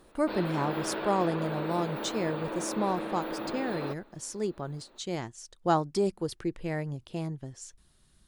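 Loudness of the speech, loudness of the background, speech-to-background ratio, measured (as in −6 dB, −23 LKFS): −32.5 LKFS, −35.5 LKFS, 3.0 dB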